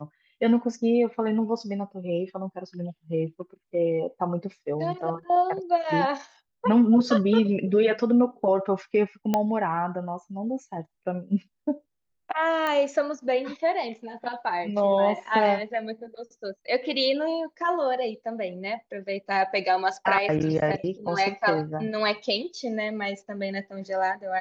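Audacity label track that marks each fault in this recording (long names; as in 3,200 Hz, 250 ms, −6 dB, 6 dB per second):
9.340000	9.340000	click −10 dBFS
12.670000	12.670000	click −15 dBFS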